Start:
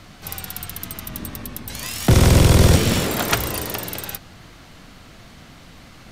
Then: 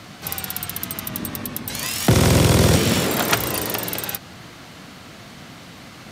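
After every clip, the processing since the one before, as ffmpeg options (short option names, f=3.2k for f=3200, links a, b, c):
-filter_complex "[0:a]highpass=110,asplit=2[a][b];[b]acompressor=threshold=-28dB:ratio=6,volume=0dB[c];[a][c]amix=inputs=2:normalize=0,volume=-1dB"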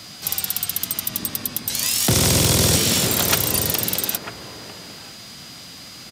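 -filter_complex "[0:a]aeval=exprs='val(0)+0.00398*sin(2*PI*4900*n/s)':c=same,acrossover=split=3400[a][b];[a]aecho=1:1:946:0.355[c];[b]aeval=exprs='0.473*sin(PI/2*2.51*val(0)/0.473)':c=same[d];[c][d]amix=inputs=2:normalize=0,volume=-4.5dB"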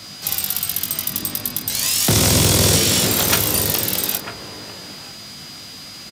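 -af "aecho=1:1:20|47:0.473|0.237,volume=1dB"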